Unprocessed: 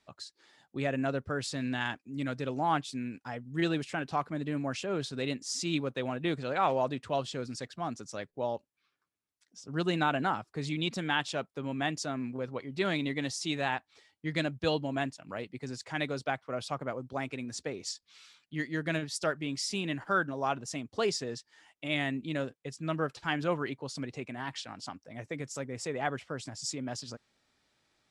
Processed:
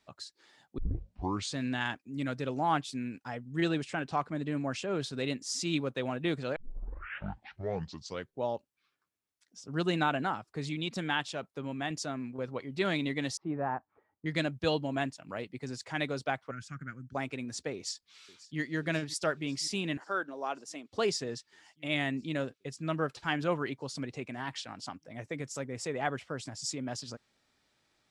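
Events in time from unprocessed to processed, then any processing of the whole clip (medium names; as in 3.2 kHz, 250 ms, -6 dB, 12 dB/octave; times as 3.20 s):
0.78 s: tape start 0.77 s
3.45–4.95 s: Chebyshev low-pass 9 kHz, order 3
6.56 s: tape start 1.86 s
10.00–12.49 s: tremolo saw down 2.1 Hz, depth 40%
13.37–14.26 s: low-pass 1.3 kHz 24 dB/octave
16.51–17.15 s: FFT filter 180 Hz 0 dB, 280 Hz -6 dB, 580 Hz -30 dB, 1 kHz -24 dB, 1.5 kHz +4 dB, 3.7 kHz -17 dB, 6.8 kHz -2 dB, 10 kHz -12 dB
17.74–18.59 s: echo throw 540 ms, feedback 80%, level -17.5 dB
19.97–20.92 s: ladder high-pass 230 Hz, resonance 20%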